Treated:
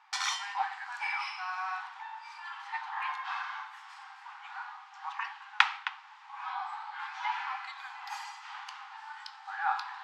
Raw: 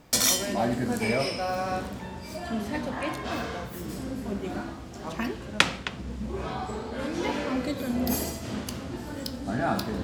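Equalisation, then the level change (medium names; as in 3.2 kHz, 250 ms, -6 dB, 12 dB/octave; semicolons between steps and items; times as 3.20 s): brick-wall FIR high-pass 760 Hz; tape spacing loss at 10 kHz 32 dB; +5.0 dB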